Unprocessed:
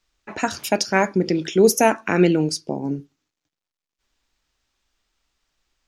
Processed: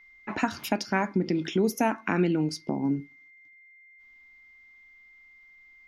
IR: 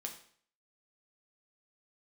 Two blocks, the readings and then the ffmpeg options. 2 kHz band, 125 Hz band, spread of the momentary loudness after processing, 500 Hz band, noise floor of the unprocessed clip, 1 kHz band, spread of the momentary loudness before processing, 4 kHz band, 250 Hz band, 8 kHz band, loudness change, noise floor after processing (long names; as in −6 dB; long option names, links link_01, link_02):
−7.0 dB, −5.5 dB, 5 LU, −10.5 dB, below −85 dBFS, −7.0 dB, 11 LU, −9.0 dB, −5.0 dB, −14.5 dB, −8.0 dB, −55 dBFS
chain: -af "aeval=exprs='val(0)+0.00251*sin(2*PI*2100*n/s)':channel_layout=same,acompressor=threshold=-29dB:ratio=2,equalizer=frequency=250:width_type=o:width=1:gain=6,equalizer=frequency=500:width_type=o:width=1:gain=-6,equalizer=frequency=1000:width_type=o:width=1:gain=4,equalizer=frequency=8000:width_type=o:width=1:gain=-11"